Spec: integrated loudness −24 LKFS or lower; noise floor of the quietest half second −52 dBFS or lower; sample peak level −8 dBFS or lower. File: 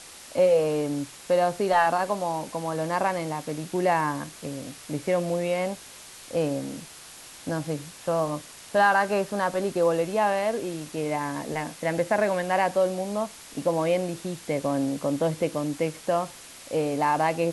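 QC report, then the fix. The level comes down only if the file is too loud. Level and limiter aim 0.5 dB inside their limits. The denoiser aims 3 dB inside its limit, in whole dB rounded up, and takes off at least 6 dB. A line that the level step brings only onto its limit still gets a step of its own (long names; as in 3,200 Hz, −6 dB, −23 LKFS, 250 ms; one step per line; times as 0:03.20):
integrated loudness −26.5 LKFS: in spec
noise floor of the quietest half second −45 dBFS: out of spec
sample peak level −10.0 dBFS: in spec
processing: broadband denoise 10 dB, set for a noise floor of −45 dBFS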